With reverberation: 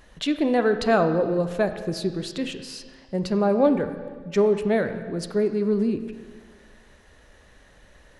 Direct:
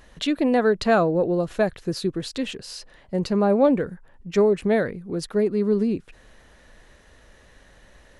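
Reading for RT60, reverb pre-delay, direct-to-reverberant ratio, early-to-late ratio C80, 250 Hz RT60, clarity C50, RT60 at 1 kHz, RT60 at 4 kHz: 1.5 s, 5 ms, 8.0 dB, 11.0 dB, 1.5 s, 9.5 dB, 1.5 s, 1.5 s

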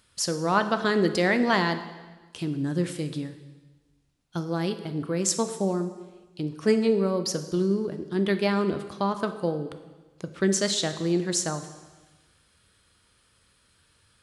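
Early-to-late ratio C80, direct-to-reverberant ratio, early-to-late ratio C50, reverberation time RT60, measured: 12.5 dB, 8.5 dB, 11.0 dB, 1.3 s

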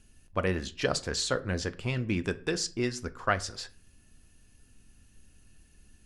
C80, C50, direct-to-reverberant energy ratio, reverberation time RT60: 23.5 dB, 19.0 dB, 10.0 dB, 0.45 s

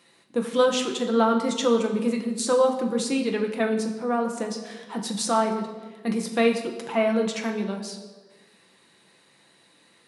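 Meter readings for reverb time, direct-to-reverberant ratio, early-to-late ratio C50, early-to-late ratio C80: 1.4 s, 2.0 dB, 8.0 dB, 10.0 dB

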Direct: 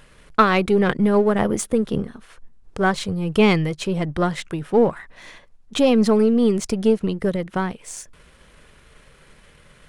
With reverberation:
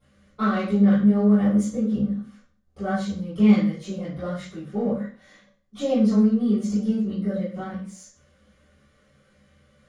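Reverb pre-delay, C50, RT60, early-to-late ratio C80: 3 ms, 1.0 dB, 0.45 s, 7.0 dB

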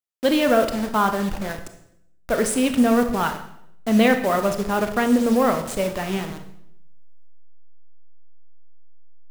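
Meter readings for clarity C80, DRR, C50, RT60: 13.0 dB, 6.5 dB, 9.0 dB, 0.75 s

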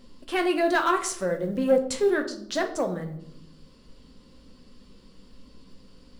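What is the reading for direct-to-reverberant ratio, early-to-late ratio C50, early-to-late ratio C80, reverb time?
4.0 dB, 10.5 dB, 15.0 dB, 0.70 s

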